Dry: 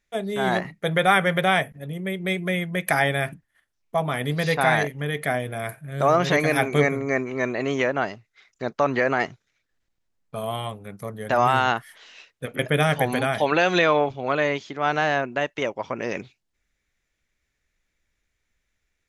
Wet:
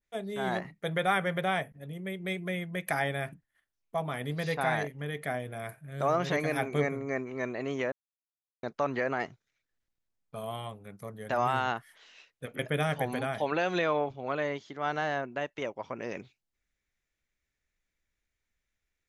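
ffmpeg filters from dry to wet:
-filter_complex "[0:a]asettb=1/sr,asplit=3[s0][s1][s2];[s0]atrim=end=14.424[s3];[s1]atrim=start=14.42:end=15.28,asetpts=PTS-STARTPTS,afade=t=in:d=0.004:c=qsin,afade=t=out:st=0.856:d=0.004:c=qsin,bandreject=f=2500:w=9.4[s4];[s2]atrim=start=15.276[s5];[s3][s4]acrossfade=d=0.004:c1=hsin:c2=qsin[s6];[s6][s5]acrossfade=d=0.004:c1=qsin:c2=hsin,asplit=3[s7][s8][s9];[s7]atrim=end=7.92,asetpts=PTS-STARTPTS,afade=t=out:st=7.916:d=0.004:c=hsin[s10];[s8]atrim=start=7.92:end=8.63,asetpts=PTS-STARTPTS,volume=0[s11];[s9]atrim=start=8.63,asetpts=PTS-STARTPTS,afade=t=in:d=0.004:c=hsin[s12];[s10][s11][s12]concat=n=3:v=0:a=1,adynamicequalizer=threshold=0.02:dfrequency=1500:dqfactor=0.7:tfrequency=1500:tqfactor=0.7:attack=5:release=100:ratio=0.375:range=2:mode=cutabove:tftype=highshelf,volume=0.376"

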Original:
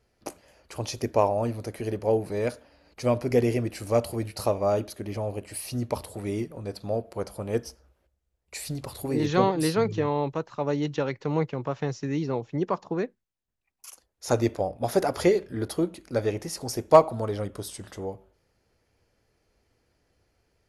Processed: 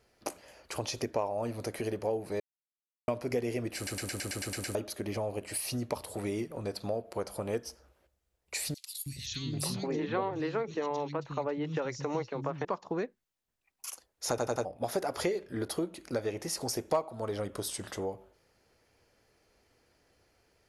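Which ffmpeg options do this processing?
-filter_complex "[0:a]asettb=1/sr,asplit=3[s0][s1][s2];[s0]atrim=end=0.834[s3];[s1]atrim=start=0.83:end=1.26,asetpts=PTS-STARTPTS,afade=t=in:d=0.004:c=qsin,afade=t=out:st=0.426:d=0.004:c=qsin,highshelf=f=8700:g=-6.5[s4];[s2]atrim=start=1.256[s5];[s3][s4]acrossfade=d=0.004:c1=hsin:c2=qsin[s6];[s6][s5]acrossfade=d=0.004:c1=qsin:c2=hsin,asettb=1/sr,asplit=3[s7][s8][s9];[s7]atrim=end=8.744[s10];[s8]atrim=start=8.74:end=12.65,asetpts=PTS-STARTPTS,afade=t=in:d=0.004:c=qsin,afade=t=out:st=3.906:d=0.004:c=qsin,acrossover=split=210|3100[s11][s12][s13];[s11]adelay=320[s14];[s12]adelay=790[s15];[s14][s15][s13]amix=inputs=3:normalize=0,atrim=end_sample=172431[s16];[s9]atrim=start=12.646[s17];[s10][s16]acrossfade=d=0.004:c1=hsin:c2=qsin[s18];[s18][s17]acrossfade=d=0.004:c1=qsin:c2=hsin,asplit=16[s19][s20][s21][s22][s23][s24][s25][s26][s27][s28][s29][s30][s31][s32][s33][s34];[s19]atrim=end=2.4,asetpts=PTS-STARTPTS,afade=t=out:st=2.396:d=0.004:c=hsin[s35];[s20]atrim=start=2.4:end=3.08,asetpts=PTS-STARTPTS,volume=0[s36];[s21]atrim=start=3.08:end=3.872,asetpts=PTS-STARTPTS,afade=t=in:d=0.004:c=hsin[s37];[s22]atrim=start=3.758:end=3.872[s38];[s23]atrim=start=3.758:end=3.872[s39];[s24]atrim=start=3.758:end=3.872[s40];[s25]atrim=start=3.758:end=3.872[s41];[s26]atrim=start=3.758:end=3.872[s42];[s27]atrim=start=3.758:end=3.872[s43];[s28]atrim=start=3.758:end=3.872[s44];[s29]atrim=start=3.758:end=3.872[s45];[s30]atrim=start=4.748:end=14.382[s46];[s31]atrim=start=14.288:end=14.382[s47];[s32]atrim=start=14.288:end=14.382[s48];[s33]atrim=start=14.288:end=14.382[s49];[s34]atrim=start=14.648[s50];[s35][s36][s37]concat=n=3:v=0:a=1[s51];[s51][s38]acrossfade=d=0.004:c1=hsin:c2=hsin[s52];[s52][s39]acrossfade=d=0.004:c1=hsin:c2=hsin[s53];[s53][s40]acrossfade=d=0.004:c1=hsin:c2=hsin[s54];[s54][s41]acrossfade=d=0.004:c1=hsin:c2=hsin[s55];[s55][s42]acrossfade=d=0.004:c1=hsin:c2=hsin[s56];[s56][s43]acrossfade=d=0.004:c1=hsin:c2=hsin[s57];[s57][s44]acrossfade=d=0.004:c1=hsin:c2=hsin[s58];[s58][s45]acrossfade=d=0.004:c1=hsin:c2=hsin[s59];[s59][s46]acrossfade=d=0.004:c1=hsin:c2=hsin[s60];[s60][s47]acrossfade=d=0.004:c1=hsin:c2=hsin[s61];[s61][s48]acrossfade=d=0.004:c1=hsin:c2=hsin[s62];[s62][s49]acrossfade=d=0.004:c1=hsin:c2=hsin[s63];[s63][s50]acrossfade=d=0.004:c1=hsin:c2=hsin,lowshelf=f=220:g=-8,acompressor=threshold=0.0158:ratio=3,volume=1.58"

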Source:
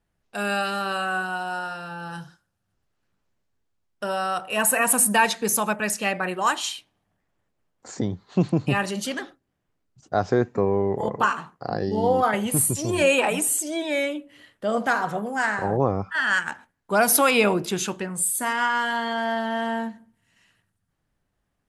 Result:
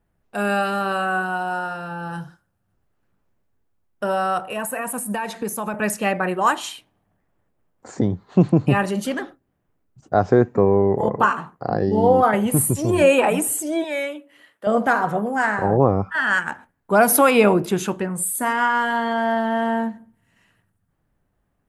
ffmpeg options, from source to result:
-filter_complex "[0:a]asettb=1/sr,asplit=3[s0][s1][s2];[s0]atrim=end=4.514[s3];[s1]atrim=start=4.51:end=5.74,asetpts=PTS-STARTPTS,afade=t=in:d=0.004:c=qsin,afade=t=out:st=1.226:d=0.004:c=qsin,acompressor=threshold=0.0447:ratio=5:attack=3.2:release=140:knee=1:detection=peak[s4];[s2]atrim=start=5.736[s5];[s3][s4]acrossfade=d=0.004:c1=hsin:c2=qsin[s6];[s6][s5]acrossfade=d=0.004:c1=qsin:c2=hsin,asettb=1/sr,asplit=3[s7][s8][s9];[s7]atrim=end=13.844[s10];[s8]atrim=start=13.84:end=14.67,asetpts=PTS-STARTPTS,afade=t=in:d=0.004:c=qsin,afade=t=out:st=0.826:d=0.004:c=qsin,highpass=f=950:p=1[s11];[s9]atrim=start=14.666[s12];[s10][s11]acrossfade=d=0.004:c1=hsin:c2=qsin[s13];[s13][s12]acrossfade=d=0.004:c1=qsin:c2=hsin,equalizer=f=5000:w=0.5:g=-11,volume=2"

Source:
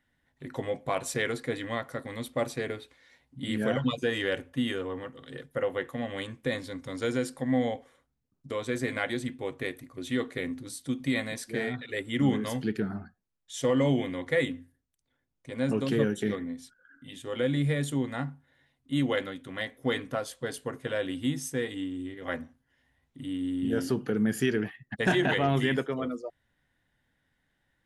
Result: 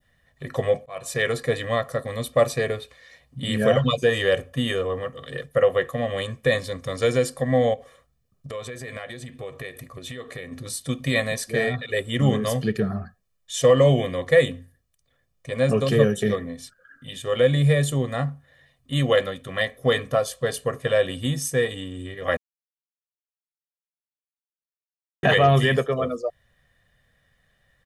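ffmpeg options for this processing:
-filter_complex "[0:a]asplit=3[s0][s1][s2];[s0]afade=t=out:st=7.73:d=0.02[s3];[s1]acompressor=threshold=0.01:ratio=6:attack=3.2:release=140:knee=1:detection=peak,afade=t=in:st=7.73:d=0.02,afade=t=out:st=10.51:d=0.02[s4];[s2]afade=t=in:st=10.51:d=0.02[s5];[s3][s4][s5]amix=inputs=3:normalize=0,asplit=4[s6][s7][s8][s9];[s6]atrim=end=0.86,asetpts=PTS-STARTPTS,afade=t=out:st=0.856:d=0.004:c=hsin[s10];[s7]atrim=start=0.86:end=22.37,asetpts=PTS-STARTPTS,afade=t=in:d=0.54,afade=t=out:st=21.506:d=0.004:c=hsin[s11];[s8]atrim=start=22.37:end=25.23,asetpts=PTS-STARTPTS,volume=0[s12];[s9]atrim=start=25.23,asetpts=PTS-STARTPTS,afade=t=in:d=0.004:c=hsin[s13];[s10][s11][s12][s13]concat=n=4:v=0:a=1,adynamicequalizer=threshold=0.00447:dfrequency=2000:dqfactor=0.84:tfrequency=2000:tqfactor=0.84:attack=5:release=100:ratio=0.375:range=2.5:mode=cutabove:tftype=bell,aecho=1:1:1.7:0.74,volume=2.37"

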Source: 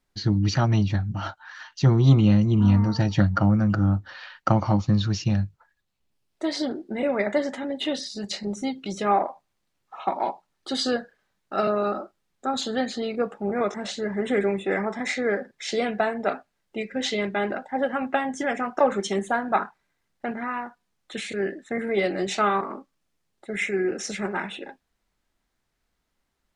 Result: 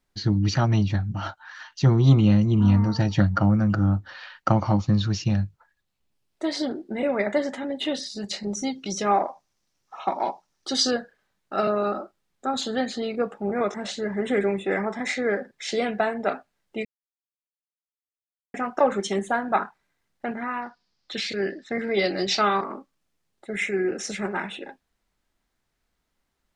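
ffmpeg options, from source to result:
-filter_complex "[0:a]asettb=1/sr,asplit=3[s0][s1][s2];[s0]atrim=end=8.524[s3];[s1]atrim=start=8.52:end=10.91,asetpts=PTS-STARTPTS,afade=t=in:d=0.004:c=qsin,afade=t=out:st=2.386:d=0.004:c=qsin,equalizer=f=5700:t=o:w=0.5:g=11.5[s4];[s2]atrim=start=10.906[s5];[s3][s4]acrossfade=d=0.004:c1=hsin:c2=qsin[s6];[s6][s5]acrossfade=d=0.004:c1=qsin:c2=hsin,asettb=1/sr,asplit=3[s7][s8][s9];[s7]atrim=end=20.624[s10];[s8]atrim=start=20.62:end=22.64,asetpts=PTS-STARTPTS,afade=t=in:d=0.004:c=qsin,afade=t=out:st=2.016:d=0.004:c=qsin,lowpass=f=4900:t=q:w=6.1[s11];[s9]atrim=start=22.636[s12];[s10][s11]acrossfade=d=0.004:c1=hsin:c2=qsin[s13];[s13][s12]acrossfade=d=0.004:c1=qsin:c2=hsin,asplit=3[s14][s15][s16];[s14]atrim=end=16.85,asetpts=PTS-STARTPTS,afade=t=out:st=16.846:d=0.004:c=hsin[s17];[s15]atrim=start=16.85:end=18.54,asetpts=PTS-STARTPTS,volume=0[s18];[s16]atrim=start=18.54,asetpts=PTS-STARTPTS,afade=t=in:d=0.004:c=hsin[s19];[s17][s18][s19]concat=n=3:v=0:a=1"

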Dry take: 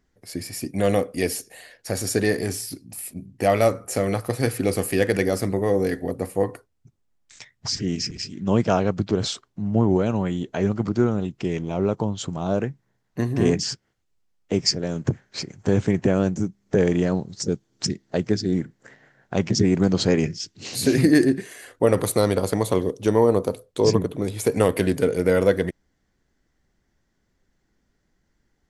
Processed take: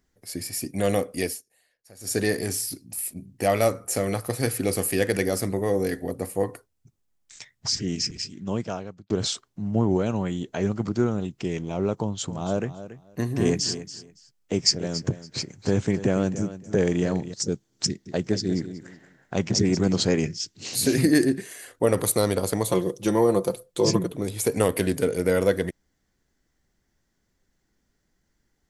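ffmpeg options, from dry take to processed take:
-filter_complex "[0:a]asettb=1/sr,asplit=3[s0][s1][s2];[s0]atrim=end=12.004[s3];[s1]atrim=start=12:end=17.34,asetpts=PTS-STARTPTS,afade=t=in:d=0.004:c=qsin,afade=t=out:st=5.336:d=0.004:c=qsin,aecho=1:1:281|562:0.211|0.038,atrim=end_sample=235494[s4];[s2]atrim=start=17.336[s5];[s3][s4]acrossfade=d=0.004:c1=hsin:c2=qsin[s6];[s6][s5]acrossfade=d=0.004:c1=qsin:c2=hsin,asettb=1/sr,asplit=3[s7][s8][s9];[s7]atrim=end=17.874[s10];[s8]atrim=start=17.87:end=20,asetpts=PTS-STARTPTS,afade=t=in:d=0.004:c=qsin,afade=t=out:st=2.126:d=0.004:c=qsin,aecho=1:1:185|370|555:0.266|0.0718|0.0194,atrim=end_sample=93933[s11];[s9]atrim=start=19.996[s12];[s10][s11]acrossfade=d=0.004:c1=hsin:c2=qsin[s13];[s13][s12]acrossfade=d=0.004:c1=qsin:c2=hsin,asettb=1/sr,asplit=3[s14][s15][s16];[s14]atrim=end=22.694[s17];[s15]atrim=start=22.69:end=24.11,asetpts=PTS-STARTPTS,afade=t=in:d=0.004:c=qsin,afade=t=out:st=1.416:d=0.004:c=qsin,aecho=1:1:5.8:0.65,atrim=end_sample=62622[s18];[s16]atrim=start=24.106[s19];[s17][s18]acrossfade=d=0.004:c1=hsin:c2=qsin[s20];[s20][s19]acrossfade=d=0.004:c1=qsin:c2=hsin,asplit=4[s21][s22][s23][s24];[s21]atrim=end=1.41,asetpts=PTS-STARTPTS,afade=t=out:st=1.21:d=0.2:silence=0.0841395[s25];[s22]atrim=start=1.41:end=1.99,asetpts=PTS-STARTPTS,volume=0.0841[s26];[s23]atrim=start=1.99:end=9.1,asetpts=PTS-STARTPTS,afade=t=in:d=0.2:silence=0.0841395,afade=t=out:st=6.1:d=1.01[s27];[s24]atrim=start=9.1,asetpts=PTS-STARTPTS,afade=t=in:d=0.004:c=hsin[s28];[s25][s26][s27][s28]concat=n=4:v=0:a=1,highshelf=f=5400:g=8.5,volume=0.708"

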